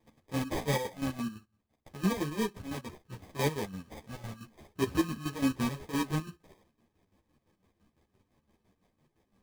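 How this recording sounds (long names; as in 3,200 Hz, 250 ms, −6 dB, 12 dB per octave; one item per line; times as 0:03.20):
chopped level 5.9 Hz, depth 65%, duty 50%
aliases and images of a low sample rate 1,400 Hz, jitter 0%
a shimmering, thickened sound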